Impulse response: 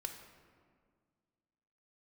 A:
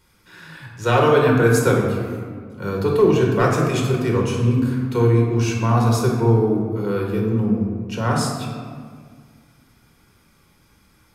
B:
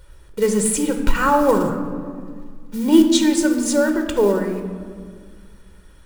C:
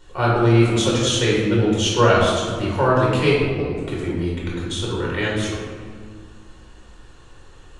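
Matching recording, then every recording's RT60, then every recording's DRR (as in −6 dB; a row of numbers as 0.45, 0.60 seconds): B; 1.8, 1.9, 1.8 seconds; −1.0, 4.5, −6.0 decibels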